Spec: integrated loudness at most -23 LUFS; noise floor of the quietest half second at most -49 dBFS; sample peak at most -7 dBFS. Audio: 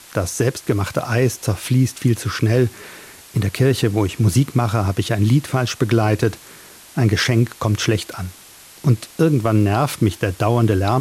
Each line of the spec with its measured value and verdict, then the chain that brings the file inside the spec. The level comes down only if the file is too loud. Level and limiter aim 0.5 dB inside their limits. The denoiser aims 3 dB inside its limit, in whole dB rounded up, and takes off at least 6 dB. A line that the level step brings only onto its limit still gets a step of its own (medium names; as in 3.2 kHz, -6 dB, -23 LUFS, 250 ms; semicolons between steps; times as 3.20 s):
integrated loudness -19.0 LUFS: fail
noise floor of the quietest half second -43 dBFS: fail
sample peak -5.0 dBFS: fail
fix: noise reduction 6 dB, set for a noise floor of -43 dBFS; trim -4.5 dB